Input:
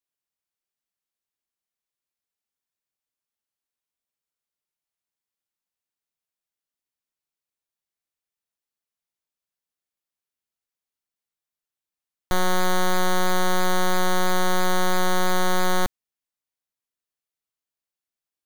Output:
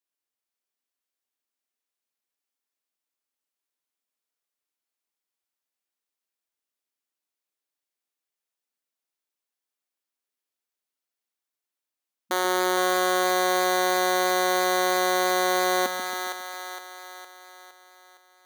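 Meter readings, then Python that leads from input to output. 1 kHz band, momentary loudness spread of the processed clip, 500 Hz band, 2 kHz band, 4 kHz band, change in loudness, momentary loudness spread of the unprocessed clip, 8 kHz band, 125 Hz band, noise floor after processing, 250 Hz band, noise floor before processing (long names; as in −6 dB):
+1.5 dB, 14 LU, +2.5 dB, +1.5 dB, +1.5 dB, +0.5 dB, 2 LU, +1.5 dB, below −15 dB, below −85 dBFS, −2.5 dB, below −85 dBFS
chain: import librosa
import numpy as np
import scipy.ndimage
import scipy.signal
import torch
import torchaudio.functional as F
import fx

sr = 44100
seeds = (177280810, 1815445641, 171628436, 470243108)

y = fx.brickwall_highpass(x, sr, low_hz=210.0)
y = fx.echo_split(y, sr, split_hz=500.0, low_ms=136, high_ms=462, feedback_pct=52, wet_db=-5.5)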